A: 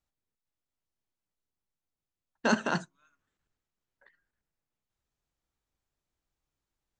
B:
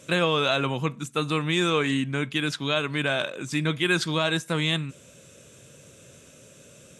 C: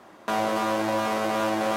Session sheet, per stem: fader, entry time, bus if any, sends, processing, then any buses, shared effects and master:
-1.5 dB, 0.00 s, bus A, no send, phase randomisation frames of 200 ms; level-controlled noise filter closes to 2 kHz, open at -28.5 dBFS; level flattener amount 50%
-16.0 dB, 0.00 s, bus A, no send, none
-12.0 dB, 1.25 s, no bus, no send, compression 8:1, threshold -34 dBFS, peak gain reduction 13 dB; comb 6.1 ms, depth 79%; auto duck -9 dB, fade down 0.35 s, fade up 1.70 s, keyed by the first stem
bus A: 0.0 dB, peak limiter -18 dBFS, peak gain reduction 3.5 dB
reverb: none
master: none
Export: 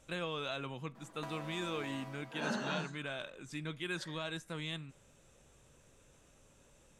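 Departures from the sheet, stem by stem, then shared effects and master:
stem A -1.5 dB -> -12.0 dB; stem C: entry 1.25 s -> 0.95 s

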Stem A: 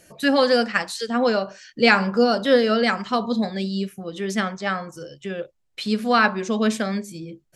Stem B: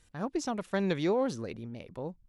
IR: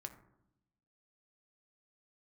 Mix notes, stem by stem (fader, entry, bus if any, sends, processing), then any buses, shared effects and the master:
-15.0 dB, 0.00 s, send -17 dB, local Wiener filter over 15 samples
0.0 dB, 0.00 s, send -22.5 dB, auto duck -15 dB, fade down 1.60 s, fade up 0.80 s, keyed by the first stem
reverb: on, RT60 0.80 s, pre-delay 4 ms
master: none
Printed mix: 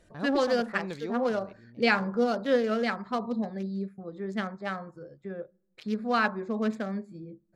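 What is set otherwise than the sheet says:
stem A -15.0 dB -> -8.0 dB; master: extra treble shelf 5.6 kHz -6 dB

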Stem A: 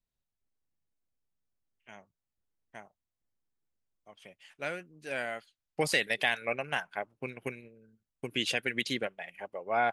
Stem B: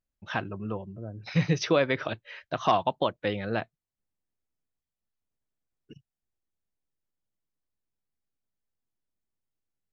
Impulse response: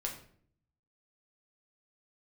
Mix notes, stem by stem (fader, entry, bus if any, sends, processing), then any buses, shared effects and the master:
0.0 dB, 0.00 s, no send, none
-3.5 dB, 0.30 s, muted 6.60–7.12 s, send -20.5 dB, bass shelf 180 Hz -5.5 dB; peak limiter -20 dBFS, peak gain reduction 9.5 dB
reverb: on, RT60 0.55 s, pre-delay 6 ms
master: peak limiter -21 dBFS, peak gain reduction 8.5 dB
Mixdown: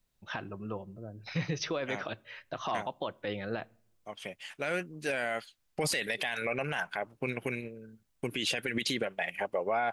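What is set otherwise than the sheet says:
stem A 0.0 dB -> +11.0 dB; stem B: entry 0.30 s -> 0.00 s

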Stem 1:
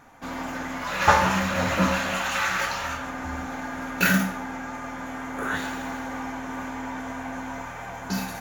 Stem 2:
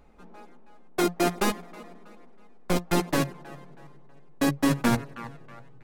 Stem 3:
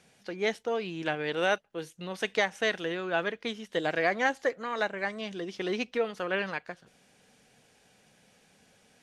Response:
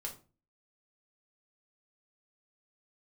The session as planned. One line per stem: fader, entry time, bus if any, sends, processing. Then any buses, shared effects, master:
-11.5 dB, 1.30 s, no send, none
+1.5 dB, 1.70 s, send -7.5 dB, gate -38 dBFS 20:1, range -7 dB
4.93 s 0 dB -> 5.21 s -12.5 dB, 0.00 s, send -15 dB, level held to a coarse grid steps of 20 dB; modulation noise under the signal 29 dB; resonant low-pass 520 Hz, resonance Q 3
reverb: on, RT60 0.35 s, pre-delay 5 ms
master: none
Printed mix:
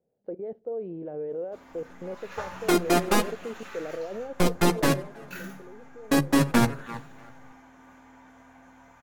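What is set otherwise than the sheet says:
stem 1 -11.5 dB -> -19.5 dB; stem 2: send -7.5 dB -> -14.5 dB

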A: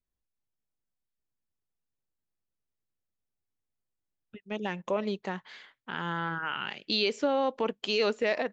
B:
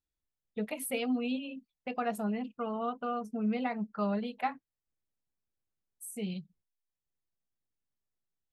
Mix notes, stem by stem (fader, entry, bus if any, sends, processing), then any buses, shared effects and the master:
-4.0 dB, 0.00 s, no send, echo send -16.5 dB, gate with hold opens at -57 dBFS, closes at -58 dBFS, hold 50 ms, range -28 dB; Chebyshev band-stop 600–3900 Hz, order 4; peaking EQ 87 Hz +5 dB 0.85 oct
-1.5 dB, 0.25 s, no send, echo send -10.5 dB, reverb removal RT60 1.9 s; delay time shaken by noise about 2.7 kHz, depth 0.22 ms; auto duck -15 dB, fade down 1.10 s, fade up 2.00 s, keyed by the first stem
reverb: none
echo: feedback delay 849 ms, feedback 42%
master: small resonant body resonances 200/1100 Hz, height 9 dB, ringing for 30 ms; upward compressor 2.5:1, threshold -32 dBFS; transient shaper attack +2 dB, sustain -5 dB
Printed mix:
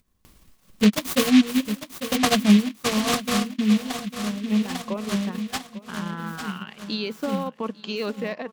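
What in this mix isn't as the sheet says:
stem A: missing Chebyshev band-stop 600–3900 Hz, order 4; stem B -1.5 dB -> +10.5 dB

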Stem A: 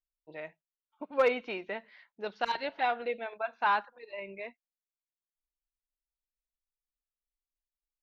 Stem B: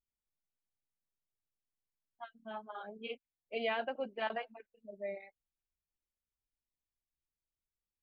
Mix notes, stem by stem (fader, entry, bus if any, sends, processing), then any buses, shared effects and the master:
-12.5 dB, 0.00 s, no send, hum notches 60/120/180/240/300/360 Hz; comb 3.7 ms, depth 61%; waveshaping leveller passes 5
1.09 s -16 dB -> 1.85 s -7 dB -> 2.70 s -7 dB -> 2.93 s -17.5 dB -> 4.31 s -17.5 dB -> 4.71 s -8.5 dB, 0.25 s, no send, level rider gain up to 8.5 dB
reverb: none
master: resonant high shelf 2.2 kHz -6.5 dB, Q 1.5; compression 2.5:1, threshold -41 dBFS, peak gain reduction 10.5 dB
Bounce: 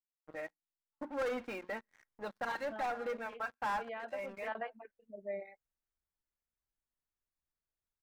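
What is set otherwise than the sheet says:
stem A -12.5 dB -> -19.5 dB; master: missing compression 2.5:1, threshold -41 dBFS, peak gain reduction 10.5 dB

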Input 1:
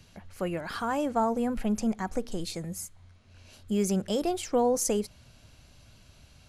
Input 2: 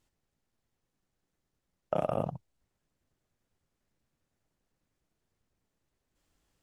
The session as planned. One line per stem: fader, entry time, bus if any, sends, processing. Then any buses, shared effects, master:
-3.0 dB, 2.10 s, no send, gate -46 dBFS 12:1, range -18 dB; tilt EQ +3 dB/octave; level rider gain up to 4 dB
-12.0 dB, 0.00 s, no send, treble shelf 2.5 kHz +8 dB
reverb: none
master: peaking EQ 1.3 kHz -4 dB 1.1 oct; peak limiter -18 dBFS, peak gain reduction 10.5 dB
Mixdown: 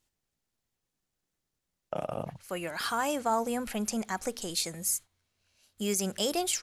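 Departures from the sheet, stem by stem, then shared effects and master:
stem 2 -12.0 dB -> -4.5 dB; master: missing peaking EQ 1.3 kHz -4 dB 1.1 oct

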